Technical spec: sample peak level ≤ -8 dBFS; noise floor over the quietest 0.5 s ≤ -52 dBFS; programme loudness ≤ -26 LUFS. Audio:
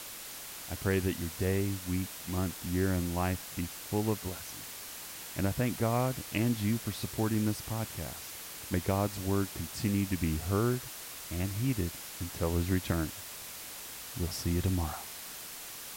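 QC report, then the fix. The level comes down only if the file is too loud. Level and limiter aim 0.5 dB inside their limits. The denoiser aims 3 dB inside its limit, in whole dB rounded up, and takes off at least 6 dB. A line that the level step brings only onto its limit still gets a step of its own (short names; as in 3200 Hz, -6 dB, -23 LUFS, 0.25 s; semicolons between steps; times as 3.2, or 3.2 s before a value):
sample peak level -15.0 dBFS: OK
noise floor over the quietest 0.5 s -44 dBFS: fail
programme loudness -33.5 LUFS: OK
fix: denoiser 11 dB, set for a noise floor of -44 dBFS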